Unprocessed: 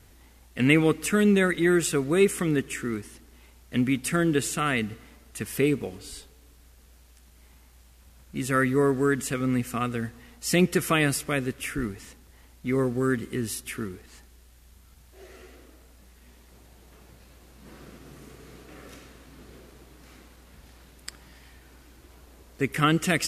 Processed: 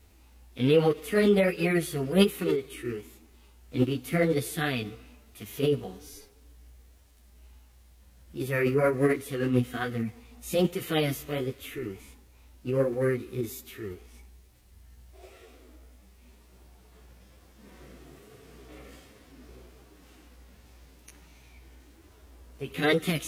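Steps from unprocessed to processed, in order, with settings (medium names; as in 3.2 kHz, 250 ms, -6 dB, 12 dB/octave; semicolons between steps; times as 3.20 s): harmonic-percussive split percussive -12 dB; chorus voices 2, 1.2 Hz, delay 13 ms, depth 3.5 ms; formant shift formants +4 st; trim +2.5 dB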